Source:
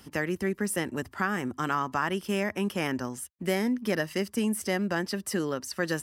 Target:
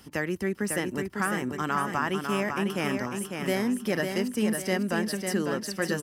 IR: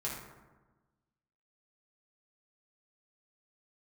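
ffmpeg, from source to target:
-af "aecho=1:1:550|1100|1650|2200|2750:0.531|0.212|0.0849|0.034|0.0136"

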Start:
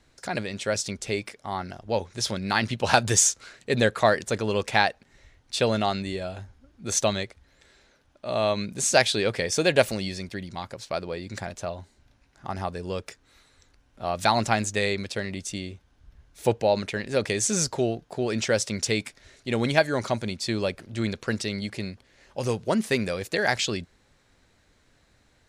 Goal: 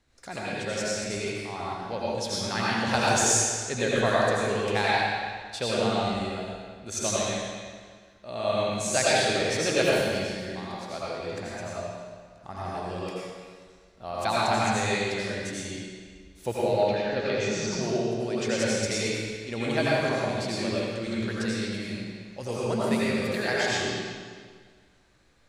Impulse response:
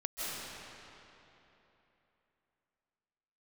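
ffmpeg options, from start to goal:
-filter_complex "[0:a]asettb=1/sr,asplit=3[s0][s1][s2];[s0]atrim=end=16.554[s3];[s1]atrim=start=16.55:end=17.68,asetpts=PTS-STARTPTS,afade=t=in:d=0.004:c=qsin,afade=t=out:st=1.126:d=0.004:c=qsin,lowpass=f=5200:w=0.5412,lowpass=f=5200:w=1.3066[s4];[s2]atrim=start=17.676[s5];[s3][s4]acrossfade=d=0.004:c1=hsin:c2=qsin[s6];[s6][s5]acrossfade=d=0.004:c1=qsin:c2=hsin[s7];[1:a]atrim=start_sample=2205,asetrate=83790,aresample=44100[s8];[s7][s8]afir=irnorm=-1:irlink=0"

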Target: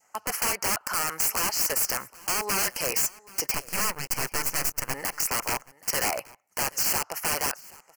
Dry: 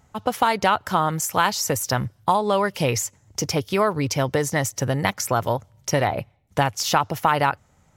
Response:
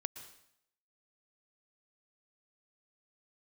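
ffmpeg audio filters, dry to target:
-filter_complex "[0:a]highpass=740,asplit=2[s0][s1];[s1]asoftclip=type=tanh:threshold=0.168,volume=0.501[s2];[s0][s2]amix=inputs=2:normalize=0,adynamicequalizer=threshold=0.0398:dfrequency=1200:dqfactor=1.5:tfrequency=1200:tqfactor=1.5:attack=5:release=100:ratio=0.375:range=2.5:mode=boostabove:tftype=bell,alimiter=limit=0.422:level=0:latency=1:release=323,asettb=1/sr,asplit=3[s3][s4][s5];[s3]atrim=end=3.544[s6];[s4]atrim=start=3.54:end=4.94,asetpts=PTS-STARTPTS,afade=t=in:d=0.004:c=qsin,afade=t=out:st=1.396:d=0.004:c=qsin,acrusher=bits=5:dc=4:mix=0:aa=0.000001[s7];[s5]atrim=start=4.936[s8];[s6][s7]acrossfade=d=0.004:c1=hsin:c2=qsin[s9];[s9][s8]acrossfade=d=0.004:c1=qsin:c2=hsin,aeval=exprs='(mod(8.41*val(0)+1,2)-1)/8.41':c=same,asuperstop=centerf=3600:order=4:qfactor=2.2,highshelf=f=7000:g=4.5,asplit=2[s10][s11];[s11]aecho=0:1:778:0.0794[s12];[s10][s12]amix=inputs=2:normalize=0,volume=0.75"

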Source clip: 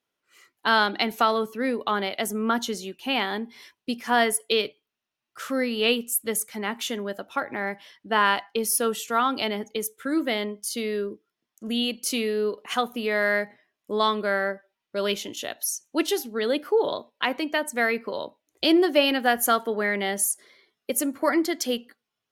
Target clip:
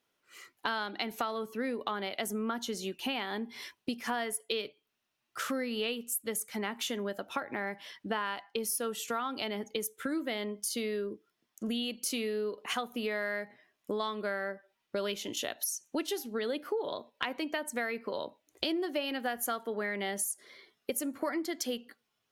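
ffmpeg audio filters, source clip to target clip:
-af "acompressor=threshold=0.0158:ratio=5,volume=1.5"

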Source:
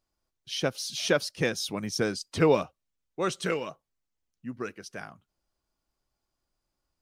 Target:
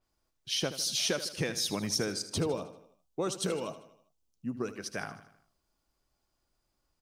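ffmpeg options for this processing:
-filter_complex "[0:a]asettb=1/sr,asplit=3[s0][s1][s2];[s0]atrim=end=2.144[s3];[s1]atrim=start=2.14:end=4.76,asetpts=PTS-STARTPTS,afade=t=in:d=0.004:c=qsin,afade=t=out:st=2.616:d=0.004:c=qsin,equalizer=f=1900:t=o:w=0.92:g=-12.5[s4];[s2]atrim=start=4.756[s5];[s3][s4]acrossfade=d=0.004:c1=hsin:c2=qsin[s6];[s6][s5]acrossfade=d=0.004:c1=qsin:c2=hsin,acompressor=threshold=0.0251:ratio=6,aecho=1:1:78|156|234|312|390:0.224|0.114|0.0582|0.0297|0.0151,adynamicequalizer=threshold=0.00355:dfrequency=4600:dqfactor=0.7:tfrequency=4600:tqfactor=0.7:attack=5:release=100:ratio=0.375:range=2:mode=boostabove:tftype=highshelf,volume=1.41"

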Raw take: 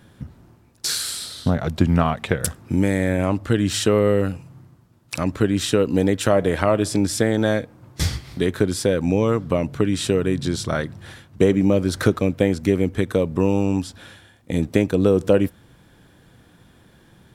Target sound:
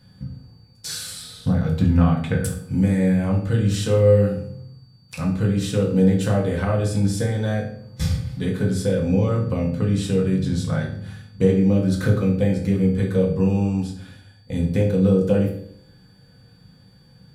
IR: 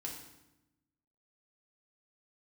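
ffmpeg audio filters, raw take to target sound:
-filter_complex "[0:a]aeval=exprs='val(0)+0.00316*sin(2*PI*4600*n/s)':c=same,lowshelf=f=220:t=q:w=1.5:g=6.5[s0];[1:a]atrim=start_sample=2205,asetrate=74970,aresample=44100[s1];[s0][s1]afir=irnorm=-1:irlink=0"

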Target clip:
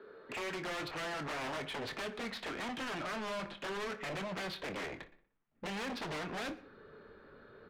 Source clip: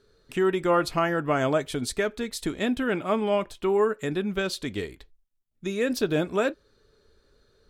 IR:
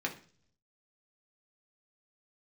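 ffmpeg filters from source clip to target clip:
-filter_complex "[0:a]adynamicsmooth=sensitivity=3:basefreq=2100,asubboost=boost=6:cutoff=170,acrossover=split=110|720|2500[s0][s1][s2][s3];[s0]acompressor=threshold=0.0178:ratio=4[s4];[s1]acompressor=threshold=0.0141:ratio=4[s5];[s2]acompressor=threshold=0.00708:ratio=4[s6];[s3]acompressor=threshold=0.00631:ratio=4[s7];[s4][s5][s6][s7]amix=inputs=4:normalize=0,aeval=exprs='0.0224*(abs(mod(val(0)/0.0224+3,4)-2)-1)':c=same,acrossover=split=170 4000:gain=0.126 1 0.0891[s8][s9][s10];[s8][s9][s10]amix=inputs=3:normalize=0,asplit=2[s11][s12];[s12]highpass=f=720:p=1,volume=14.1,asoftclip=type=tanh:threshold=0.0562[s13];[s11][s13]amix=inputs=2:normalize=0,lowpass=f=2900:p=1,volume=0.501,asoftclip=type=tanh:threshold=0.0133,asplit=2[s14][s15];[s15]adelay=26,volume=0.251[s16];[s14][s16]amix=inputs=2:normalize=0,asplit=2[s17][s18];[s18]adelay=60,lowpass=f=3800:p=1,volume=0.15,asplit=2[s19][s20];[s20]adelay=60,lowpass=f=3800:p=1,volume=0.55,asplit=2[s21][s22];[s22]adelay=60,lowpass=f=3800:p=1,volume=0.55,asplit=2[s23][s24];[s24]adelay=60,lowpass=f=3800:p=1,volume=0.55,asplit=2[s25][s26];[s26]adelay=60,lowpass=f=3800:p=1,volume=0.55[s27];[s17][s19][s21][s23][s25][s27]amix=inputs=6:normalize=0,asplit=2[s28][s29];[1:a]atrim=start_sample=2205,adelay=116[s30];[s29][s30]afir=irnorm=-1:irlink=0,volume=0.0531[s31];[s28][s31]amix=inputs=2:normalize=0"

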